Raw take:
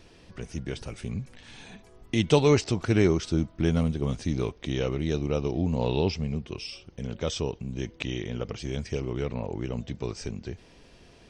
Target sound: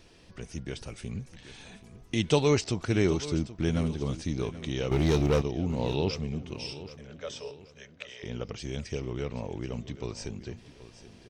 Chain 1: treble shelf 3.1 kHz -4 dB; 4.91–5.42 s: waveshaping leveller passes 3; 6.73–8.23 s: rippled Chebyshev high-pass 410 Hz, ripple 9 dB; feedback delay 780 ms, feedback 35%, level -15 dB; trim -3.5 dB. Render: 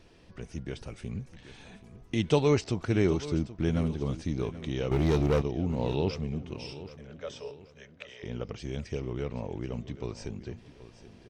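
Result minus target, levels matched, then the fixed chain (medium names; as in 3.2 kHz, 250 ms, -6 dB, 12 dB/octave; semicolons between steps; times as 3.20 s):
8 kHz band -6.0 dB
treble shelf 3.1 kHz +4 dB; 4.91–5.42 s: waveshaping leveller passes 3; 6.73–8.23 s: rippled Chebyshev high-pass 410 Hz, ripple 9 dB; feedback delay 780 ms, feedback 35%, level -15 dB; trim -3.5 dB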